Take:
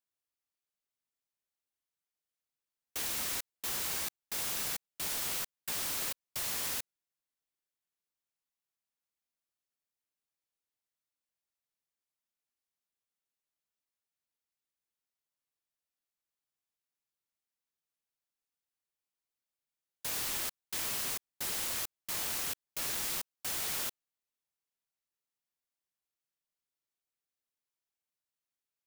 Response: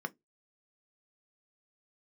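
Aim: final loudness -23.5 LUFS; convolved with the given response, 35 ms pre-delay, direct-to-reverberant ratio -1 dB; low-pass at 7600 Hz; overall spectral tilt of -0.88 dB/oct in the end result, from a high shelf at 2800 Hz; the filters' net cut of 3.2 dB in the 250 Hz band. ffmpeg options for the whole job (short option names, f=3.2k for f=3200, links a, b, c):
-filter_complex "[0:a]lowpass=7.6k,equalizer=f=250:t=o:g=-4.5,highshelf=f=2.8k:g=5.5,asplit=2[a][b];[1:a]atrim=start_sample=2205,adelay=35[c];[b][c]afir=irnorm=-1:irlink=0,volume=-1.5dB[d];[a][d]amix=inputs=2:normalize=0,volume=10.5dB"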